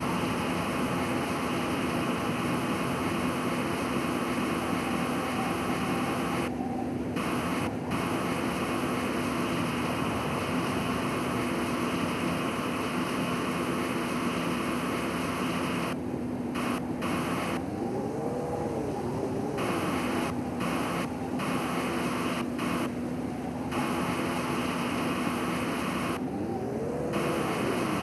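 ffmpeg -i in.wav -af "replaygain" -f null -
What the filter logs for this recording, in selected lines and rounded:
track_gain = +13.7 dB
track_peak = 0.136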